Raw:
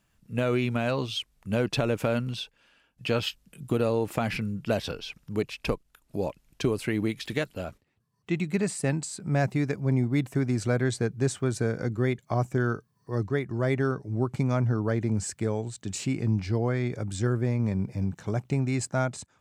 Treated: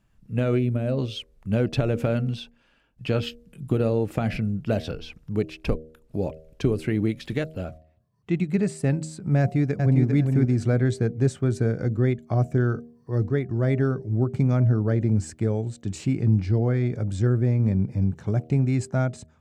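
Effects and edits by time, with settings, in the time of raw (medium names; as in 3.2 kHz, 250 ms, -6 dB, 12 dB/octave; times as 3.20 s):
0.59–0.98 s: time-frequency box 660–7700 Hz -9 dB
9.39–10.05 s: echo throw 400 ms, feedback 20%, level -4.5 dB
whole clip: tilt EQ -2 dB/octave; de-hum 78.81 Hz, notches 9; dynamic bell 990 Hz, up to -7 dB, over -50 dBFS, Q 3.5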